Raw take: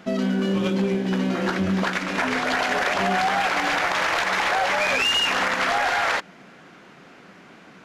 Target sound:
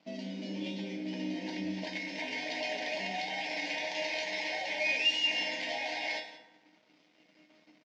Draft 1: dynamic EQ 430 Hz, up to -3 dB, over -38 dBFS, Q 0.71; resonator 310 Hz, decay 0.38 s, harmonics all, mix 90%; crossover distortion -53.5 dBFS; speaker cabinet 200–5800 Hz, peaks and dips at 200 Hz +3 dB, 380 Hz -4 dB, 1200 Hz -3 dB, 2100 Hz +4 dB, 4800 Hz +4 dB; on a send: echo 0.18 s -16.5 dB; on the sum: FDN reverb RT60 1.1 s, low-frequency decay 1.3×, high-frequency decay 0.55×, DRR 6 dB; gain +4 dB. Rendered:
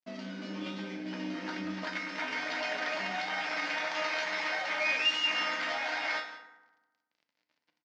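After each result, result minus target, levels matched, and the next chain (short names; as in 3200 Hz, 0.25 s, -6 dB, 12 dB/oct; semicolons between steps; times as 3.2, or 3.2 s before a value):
crossover distortion: distortion +8 dB; 1000 Hz band +3.5 dB
dynamic EQ 430 Hz, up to -3 dB, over -38 dBFS, Q 0.71; resonator 310 Hz, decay 0.38 s, harmonics all, mix 90%; crossover distortion -64.5 dBFS; speaker cabinet 200–5800 Hz, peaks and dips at 200 Hz +3 dB, 380 Hz -4 dB, 1200 Hz -3 dB, 2100 Hz +4 dB, 4800 Hz +4 dB; on a send: echo 0.18 s -16.5 dB; on the sum: FDN reverb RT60 1.1 s, low-frequency decay 1.3×, high-frequency decay 0.55×, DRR 6 dB; gain +4 dB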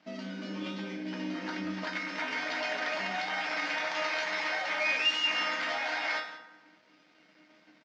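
1000 Hz band +3.5 dB
dynamic EQ 430 Hz, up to -3 dB, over -38 dBFS, Q 0.71; Butterworth band-stop 1300 Hz, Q 1.1; resonator 310 Hz, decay 0.38 s, harmonics all, mix 90%; crossover distortion -64.5 dBFS; speaker cabinet 200–5800 Hz, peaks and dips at 200 Hz +3 dB, 380 Hz -4 dB, 1200 Hz -3 dB, 2100 Hz +4 dB, 4800 Hz +4 dB; on a send: echo 0.18 s -16.5 dB; on the sum: FDN reverb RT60 1.1 s, low-frequency decay 1.3×, high-frequency decay 0.55×, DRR 6 dB; gain +4 dB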